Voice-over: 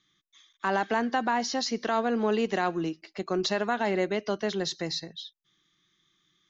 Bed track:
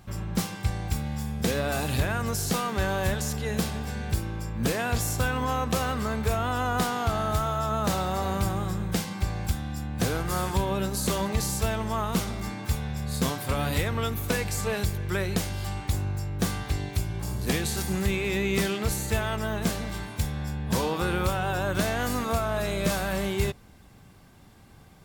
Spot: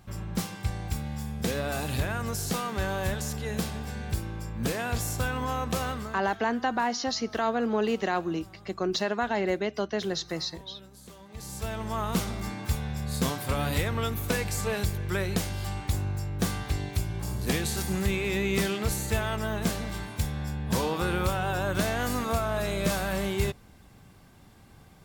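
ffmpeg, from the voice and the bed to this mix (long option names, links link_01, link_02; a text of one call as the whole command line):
ffmpeg -i stem1.wav -i stem2.wav -filter_complex "[0:a]adelay=5500,volume=-0.5dB[link_01];[1:a]volume=18dB,afade=type=out:start_time=5.88:duration=0.36:silence=0.112202,afade=type=in:start_time=11.28:duration=0.83:silence=0.0891251[link_02];[link_01][link_02]amix=inputs=2:normalize=0" out.wav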